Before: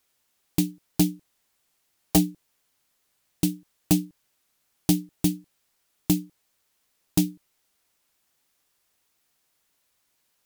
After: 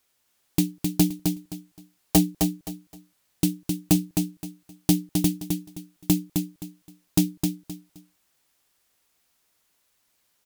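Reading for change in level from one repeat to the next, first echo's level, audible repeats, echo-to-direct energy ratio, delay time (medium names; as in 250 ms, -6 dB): -12.0 dB, -5.0 dB, 3, -4.5 dB, 261 ms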